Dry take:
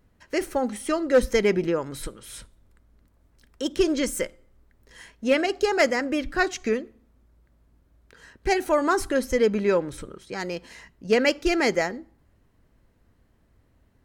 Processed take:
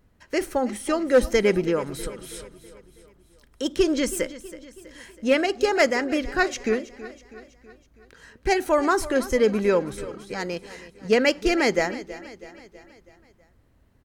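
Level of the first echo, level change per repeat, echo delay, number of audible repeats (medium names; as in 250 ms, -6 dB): -16.5 dB, -5.5 dB, 324 ms, 4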